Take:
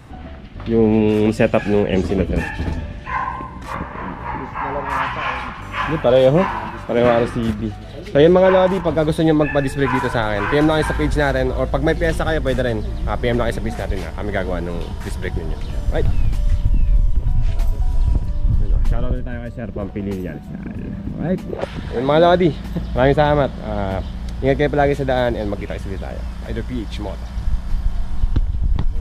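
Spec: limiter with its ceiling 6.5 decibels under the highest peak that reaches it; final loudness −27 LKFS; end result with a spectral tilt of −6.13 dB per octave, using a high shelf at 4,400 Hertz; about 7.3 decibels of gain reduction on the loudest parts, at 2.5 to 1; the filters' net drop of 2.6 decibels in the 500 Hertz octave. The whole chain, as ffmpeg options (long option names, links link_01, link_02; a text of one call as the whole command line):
ffmpeg -i in.wav -af "equalizer=frequency=500:width_type=o:gain=-3,highshelf=frequency=4400:gain=-5.5,acompressor=threshold=-22dB:ratio=2.5,volume=1dB,alimiter=limit=-15dB:level=0:latency=1" out.wav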